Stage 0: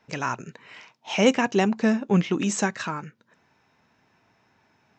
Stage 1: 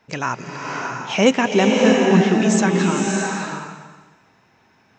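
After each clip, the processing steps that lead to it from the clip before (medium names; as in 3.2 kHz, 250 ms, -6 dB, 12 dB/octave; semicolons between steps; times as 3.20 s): swelling reverb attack 630 ms, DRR 0 dB; trim +4 dB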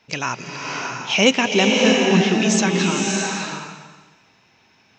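high-order bell 3.8 kHz +8.5 dB; trim -2 dB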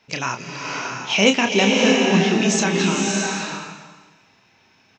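doubling 30 ms -7 dB; trim -1 dB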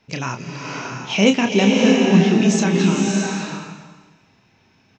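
bass shelf 350 Hz +11 dB; trim -3.5 dB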